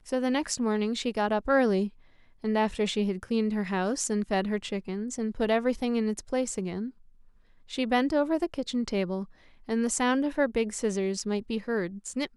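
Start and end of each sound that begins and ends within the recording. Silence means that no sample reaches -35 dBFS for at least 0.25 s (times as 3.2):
2.44–6.89
7.71–9.24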